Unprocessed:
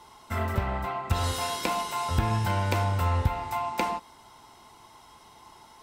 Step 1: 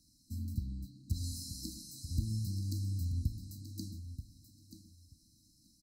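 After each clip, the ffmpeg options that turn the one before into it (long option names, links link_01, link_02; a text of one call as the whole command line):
ffmpeg -i in.wav -filter_complex "[0:a]afftfilt=real='re*(1-between(b*sr/4096,330,3900))':imag='im*(1-between(b*sr/4096,330,3900))':win_size=4096:overlap=0.75,asplit=2[link_01][link_02];[link_02]aecho=0:1:932|1864:0.282|0.0451[link_03];[link_01][link_03]amix=inputs=2:normalize=0,volume=-8dB" out.wav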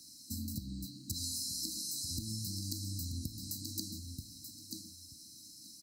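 ffmpeg -i in.wav -af "highpass=frequency=680:poles=1,acompressor=threshold=-52dB:ratio=6,volume=16dB" out.wav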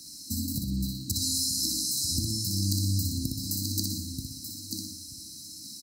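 ffmpeg -i in.wav -af "aecho=1:1:61|122|183|244|305|366:0.631|0.284|0.128|0.0575|0.0259|0.0116,volume=8.5dB" out.wav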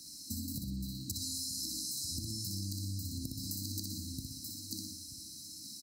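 ffmpeg -i in.wav -af "acompressor=threshold=-31dB:ratio=6,volume=-4.5dB" out.wav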